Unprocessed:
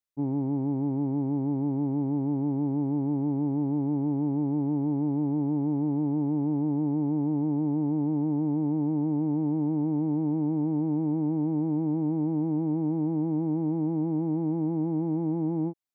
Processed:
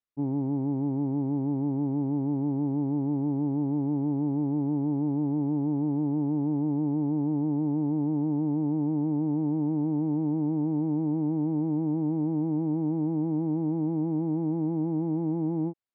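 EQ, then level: distance through air 190 m; 0.0 dB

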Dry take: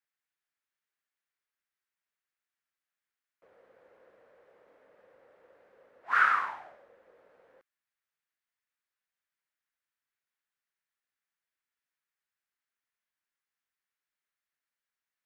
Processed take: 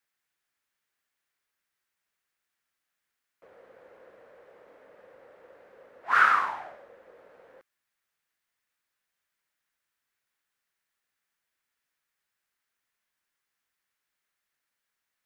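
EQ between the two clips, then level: dynamic bell 1.8 kHz, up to -5 dB, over -38 dBFS, Q 0.98; +7.5 dB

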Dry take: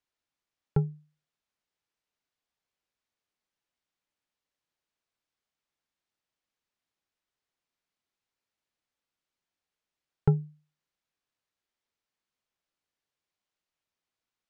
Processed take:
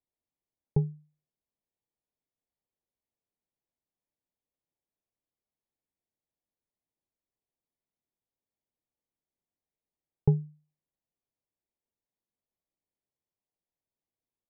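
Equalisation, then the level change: boxcar filter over 31 samples; 0.0 dB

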